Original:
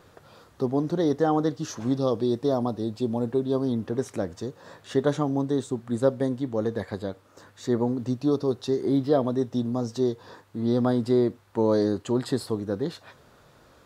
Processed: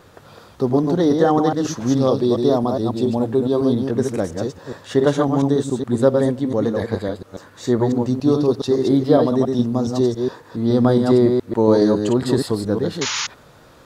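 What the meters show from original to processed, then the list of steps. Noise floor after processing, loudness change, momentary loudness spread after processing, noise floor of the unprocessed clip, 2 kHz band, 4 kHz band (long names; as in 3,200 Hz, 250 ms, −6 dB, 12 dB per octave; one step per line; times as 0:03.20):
−47 dBFS, +7.5 dB, 9 LU, −56 dBFS, +9.5 dB, +10.5 dB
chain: delay that plays each chunk backwards 139 ms, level −4 dB
sound drawn into the spectrogram noise, 0:13.01–0:13.27, 830–7,100 Hz −30 dBFS
level +6.5 dB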